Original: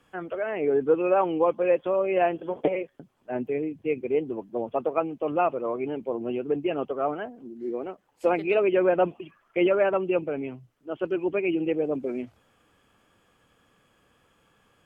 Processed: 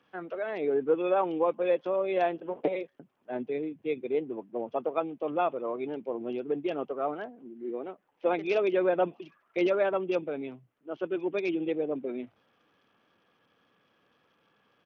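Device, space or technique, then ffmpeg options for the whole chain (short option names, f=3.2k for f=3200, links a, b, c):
Bluetooth headset: -af "highpass=160,aresample=8000,aresample=44100,volume=-4dB" -ar 48000 -c:a sbc -b:a 64k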